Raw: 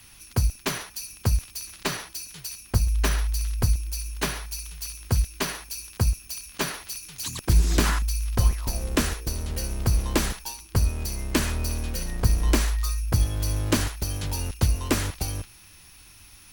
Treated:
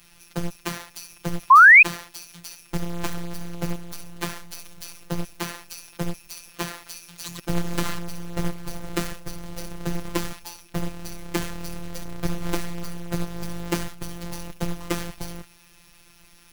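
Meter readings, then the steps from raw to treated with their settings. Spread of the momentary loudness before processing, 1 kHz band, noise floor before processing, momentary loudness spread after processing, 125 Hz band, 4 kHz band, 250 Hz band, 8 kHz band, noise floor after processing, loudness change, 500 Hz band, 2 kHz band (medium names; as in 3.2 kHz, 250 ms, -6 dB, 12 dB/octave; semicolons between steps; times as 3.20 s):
10 LU, +12.5 dB, -50 dBFS, 11 LU, -7.5 dB, -4.5 dB, +0.5 dB, -6.5 dB, -53 dBFS, +5.5 dB, -0.5 dB, +15.0 dB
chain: square wave that keeps the level; robot voice 172 Hz; painted sound rise, 1.50–1.83 s, 1–2.6 kHz -4 dBFS; trim -5 dB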